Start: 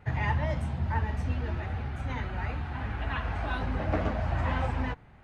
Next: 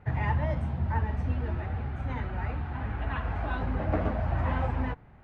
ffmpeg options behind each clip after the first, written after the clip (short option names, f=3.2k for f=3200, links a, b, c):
-af "lowpass=f=1.6k:p=1,volume=1dB"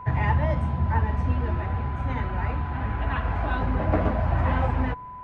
-af "aeval=exprs='val(0)+0.00794*sin(2*PI*1000*n/s)':c=same,volume=5dB"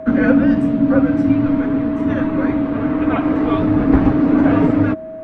-af "afreqshift=-360,volume=9dB"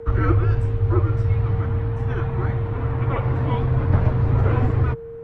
-af "afreqshift=-180,volume=-4.5dB"